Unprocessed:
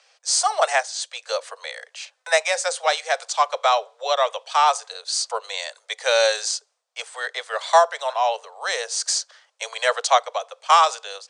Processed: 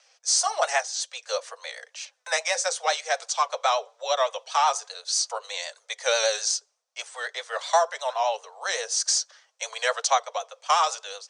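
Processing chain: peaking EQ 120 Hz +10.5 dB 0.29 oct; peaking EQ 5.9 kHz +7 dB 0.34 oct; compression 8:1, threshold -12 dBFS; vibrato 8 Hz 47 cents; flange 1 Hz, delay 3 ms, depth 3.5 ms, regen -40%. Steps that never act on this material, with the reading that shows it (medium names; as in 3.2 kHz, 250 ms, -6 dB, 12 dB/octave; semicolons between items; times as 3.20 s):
peaking EQ 120 Hz: input has nothing below 400 Hz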